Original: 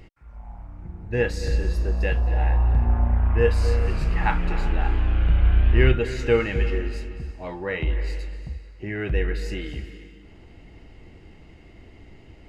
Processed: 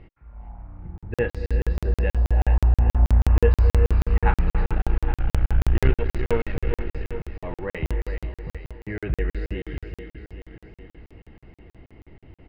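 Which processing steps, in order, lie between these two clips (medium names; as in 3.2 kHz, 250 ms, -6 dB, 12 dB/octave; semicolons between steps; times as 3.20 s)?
4.72–6.93 s: partial rectifier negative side -12 dB; distance through air 370 m; feedback delay 410 ms, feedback 58%, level -9 dB; crackling interface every 0.16 s, samples 2048, zero, from 0.98 s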